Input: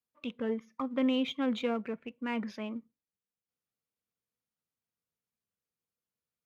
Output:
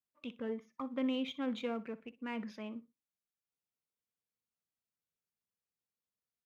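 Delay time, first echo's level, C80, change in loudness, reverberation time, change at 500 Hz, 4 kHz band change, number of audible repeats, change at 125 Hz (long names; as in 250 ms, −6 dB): 61 ms, −17.5 dB, no reverb audible, −6.0 dB, no reverb audible, −6.0 dB, −6.0 dB, 2, can't be measured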